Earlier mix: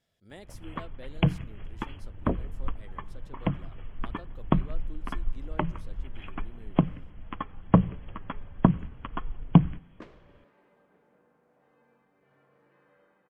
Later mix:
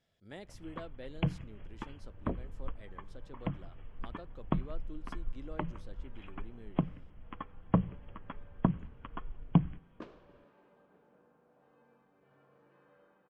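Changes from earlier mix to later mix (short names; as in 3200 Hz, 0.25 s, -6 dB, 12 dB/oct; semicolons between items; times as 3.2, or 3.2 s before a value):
first sound -8.0 dB; second sound: add bell 2000 Hz -8 dB 0.32 oct; master: add air absorption 53 m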